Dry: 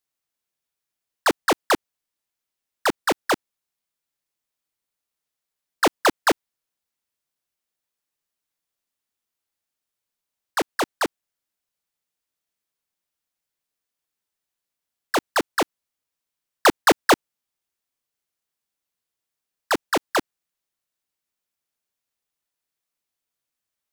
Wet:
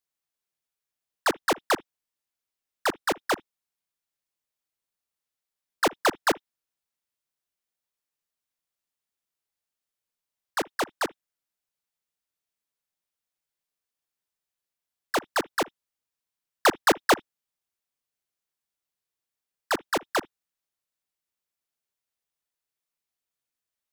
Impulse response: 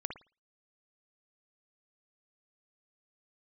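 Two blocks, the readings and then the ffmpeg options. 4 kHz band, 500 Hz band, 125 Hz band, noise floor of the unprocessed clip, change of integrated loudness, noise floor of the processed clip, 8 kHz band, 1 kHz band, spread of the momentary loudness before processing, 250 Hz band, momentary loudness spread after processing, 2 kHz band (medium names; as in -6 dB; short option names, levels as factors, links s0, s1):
-4.0 dB, -4.5 dB, -4.5 dB, -85 dBFS, -4.5 dB, under -85 dBFS, -4.0 dB, -4.0 dB, 9 LU, -5.5 dB, 8 LU, -4.0 dB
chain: -filter_complex "[0:a]equalizer=f=270:w=2.6:g=-2,asplit=2[s0][s1];[1:a]atrim=start_sample=2205,atrim=end_sample=3528[s2];[s1][s2]afir=irnorm=-1:irlink=0,volume=0.126[s3];[s0][s3]amix=inputs=2:normalize=0,volume=0.562"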